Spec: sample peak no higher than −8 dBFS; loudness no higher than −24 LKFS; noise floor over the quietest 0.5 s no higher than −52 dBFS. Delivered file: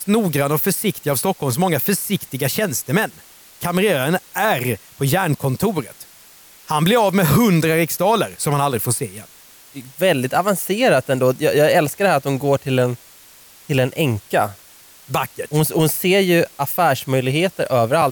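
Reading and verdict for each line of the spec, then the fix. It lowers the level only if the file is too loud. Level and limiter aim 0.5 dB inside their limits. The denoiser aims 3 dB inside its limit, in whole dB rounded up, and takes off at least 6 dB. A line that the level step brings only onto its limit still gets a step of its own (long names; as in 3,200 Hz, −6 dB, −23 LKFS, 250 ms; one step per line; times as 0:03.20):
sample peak −5.0 dBFS: out of spec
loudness −18.5 LKFS: out of spec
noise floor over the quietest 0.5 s −46 dBFS: out of spec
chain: broadband denoise 6 dB, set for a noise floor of −46 dBFS
level −6 dB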